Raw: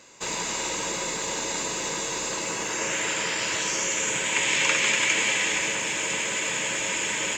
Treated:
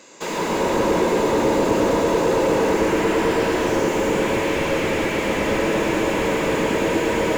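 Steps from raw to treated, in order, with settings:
high-pass filter 280 Hz 12 dB per octave
low-shelf EQ 450 Hz +11 dB
on a send: tape delay 111 ms, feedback 89%, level −3 dB, low-pass 2,000 Hz
on the sum: automatic gain control gain up to 9 dB
slew-rate limiting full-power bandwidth 78 Hz
level +3 dB

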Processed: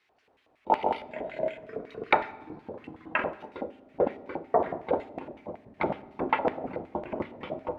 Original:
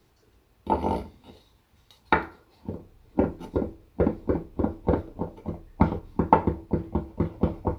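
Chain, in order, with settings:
dynamic equaliser 3,200 Hz, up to +8 dB, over −52 dBFS, Q 1.4
delay with pitch and tempo change per echo 146 ms, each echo −6 semitones, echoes 3
auto-filter band-pass square 5.4 Hz 670–2,200 Hz
on a send: convolution reverb RT60 1.2 s, pre-delay 4 ms, DRR 15 dB
on the sum: level +5.5 dB

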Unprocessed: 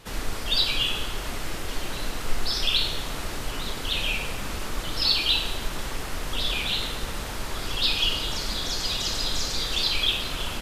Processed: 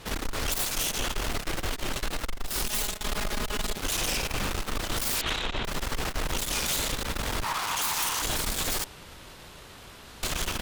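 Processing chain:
phase distortion by the signal itself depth 0.64 ms
0:02.64–0:03.80: comb filter 4.8 ms, depth 75%
0:05.21–0:05.65: elliptic low-pass filter 3,800 Hz
downward compressor 10 to 1, threshold −25 dBFS, peak gain reduction 11 dB
hard clipping −26.5 dBFS, distortion −13 dB
0:07.44–0:08.22: high-pass with resonance 960 Hz, resonance Q 3.8
0:08.84–0:10.23: fill with room tone
tube saturation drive 32 dB, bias 0.7
level +8.5 dB

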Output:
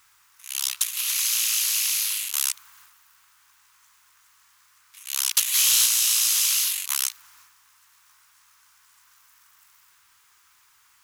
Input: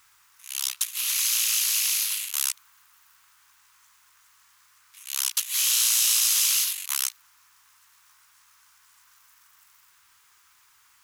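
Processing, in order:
transient designer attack +3 dB, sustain +7 dB
0:05.29–0:05.86: leveller curve on the samples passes 1

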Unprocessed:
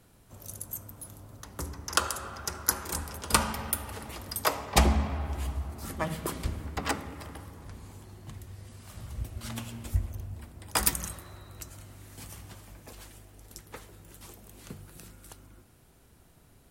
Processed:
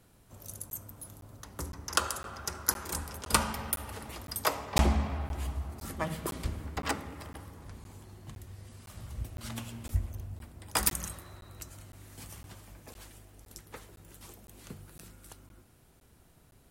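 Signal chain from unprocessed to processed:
regular buffer underruns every 0.51 s, samples 512, zero, from 0:00.70
level −2 dB

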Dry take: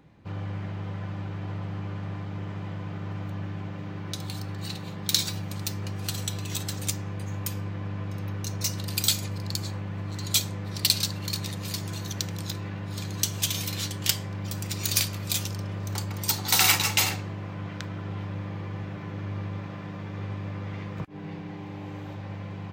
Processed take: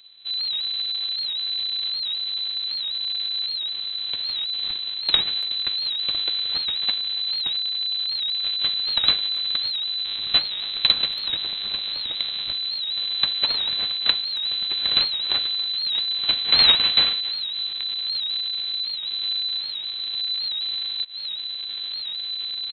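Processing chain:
each half-wave held at its own peak
0:10.05–0:12.53: high-pass filter 90 Hz 6 dB per octave
full-wave rectification
voice inversion scrambler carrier 4,000 Hz
far-end echo of a speakerphone 280 ms, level −18 dB
wow of a warped record 78 rpm, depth 100 cents

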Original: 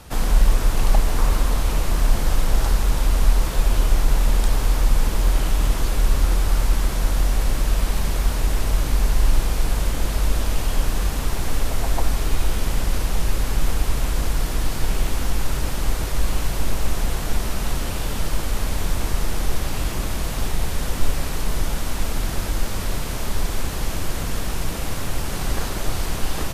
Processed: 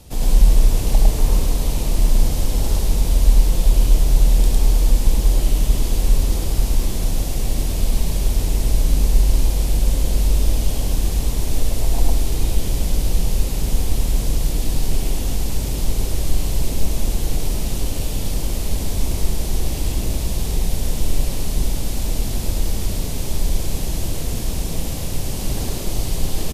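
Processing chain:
parametric band 1,400 Hz −14.5 dB 1.4 octaves
on a send: loudspeakers that aren't time-aligned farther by 24 metres −9 dB, 36 metres 0 dB

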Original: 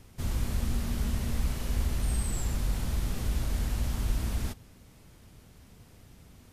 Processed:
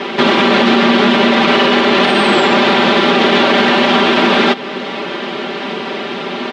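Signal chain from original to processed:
elliptic band-pass filter 290–3,500 Hz, stop band 70 dB
comb filter 5.1 ms, depth 98%
in parallel at +2.5 dB: downward compressor, threshold −52 dBFS, peak gain reduction 14.5 dB
on the sum: boost into a limiter +32.5 dB
level −1 dB

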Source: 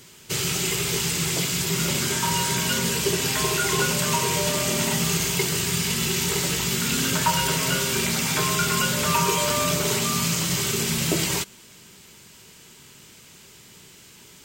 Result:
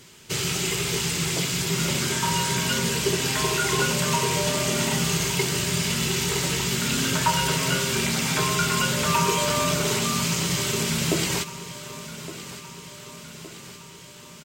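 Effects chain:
high-shelf EQ 11,000 Hz −8 dB
repeating echo 1,165 ms, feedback 60%, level −15 dB

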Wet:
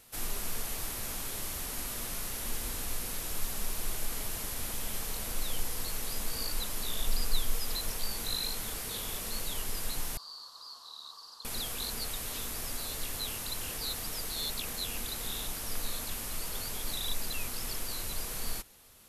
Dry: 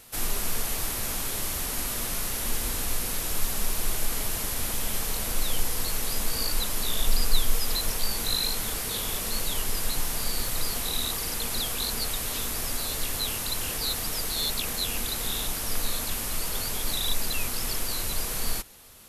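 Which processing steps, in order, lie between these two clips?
0:10.17–0:11.45: pair of resonant band-passes 2,200 Hz, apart 2 octaves
level −7 dB

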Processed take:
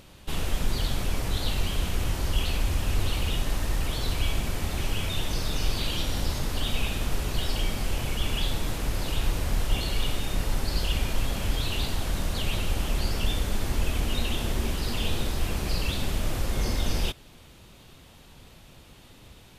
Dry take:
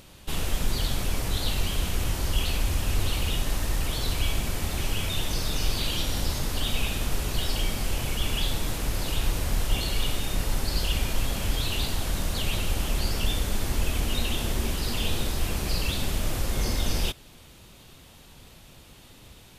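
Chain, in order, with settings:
high-shelf EQ 4,800 Hz −5 dB

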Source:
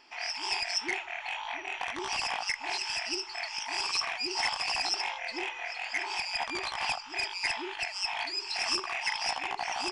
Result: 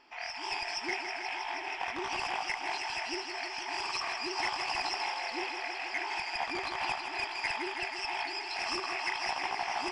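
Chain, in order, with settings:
high-shelf EQ 3,400 Hz −11 dB
feedback echo with a high-pass in the loop 160 ms, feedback 85%, high-pass 200 Hz, level −8 dB

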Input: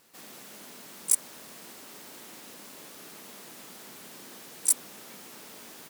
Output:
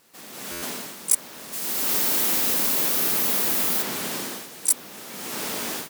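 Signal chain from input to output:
0:01.52–0:03.81: high-shelf EQ 4,900 Hz → 9,100 Hz +12 dB
automatic gain control gain up to 16.5 dB
dynamic equaliser 8,600 Hz, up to −4 dB, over −34 dBFS, Q 0.97
buffer that repeats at 0:00.51, samples 512, times 9
level +2 dB

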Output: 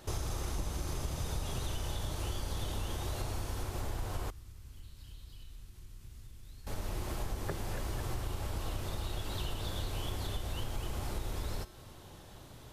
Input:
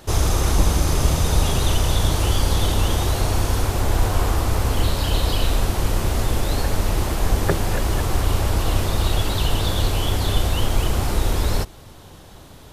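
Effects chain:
downward compressor 4 to 1, threshold −25 dBFS, peak gain reduction 12.5 dB
tuned comb filter 120 Hz, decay 0.98 s, harmonics odd, mix 70%
0:04.30–0:06.67: guitar amp tone stack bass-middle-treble 6-0-2
level +1 dB

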